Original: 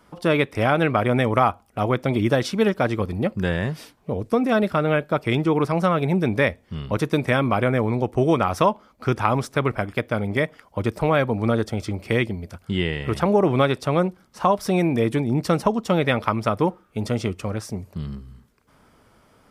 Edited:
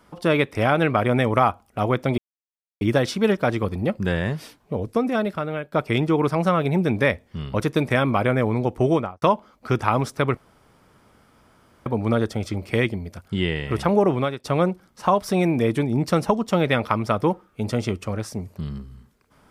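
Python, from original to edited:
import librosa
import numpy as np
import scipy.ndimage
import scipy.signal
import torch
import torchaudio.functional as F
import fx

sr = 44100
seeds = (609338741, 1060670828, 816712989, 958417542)

y = fx.studio_fade_out(x, sr, start_s=8.24, length_s=0.35)
y = fx.edit(y, sr, fx.insert_silence(at_s=2.18, length_s=0.63),
    fx.fade_out_to(start_s=4.15, length_s=0.94, floor_db=-11.5),
    fx.room_tone_fill(start_s=9.74, length_s=1.49),
    fx.fade_out_to(start_s=13.42, length_s=0.39, floor_db=-18.5), tone=tone)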